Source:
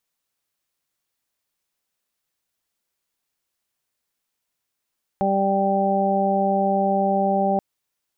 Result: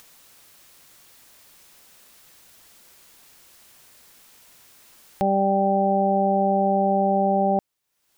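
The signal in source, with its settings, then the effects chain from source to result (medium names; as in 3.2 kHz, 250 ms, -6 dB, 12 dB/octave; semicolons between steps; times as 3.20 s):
steady additive tone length 2.38 s, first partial 196 Hz, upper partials -4/0/2 dB, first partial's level -23 dB
upward compressor, threshold -30 dBFS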